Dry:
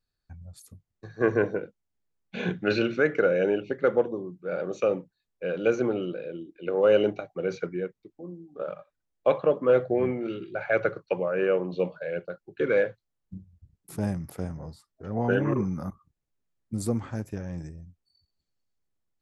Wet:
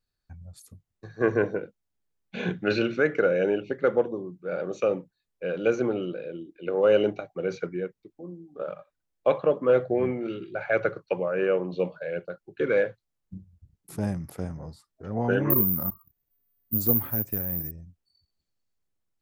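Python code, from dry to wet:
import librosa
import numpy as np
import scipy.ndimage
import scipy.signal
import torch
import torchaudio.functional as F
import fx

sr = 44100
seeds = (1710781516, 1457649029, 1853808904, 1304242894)

y = fx.resample_bad(x, sr, factor=3, down='filtered', up='zero_stuff', at=(15.5, 17.71))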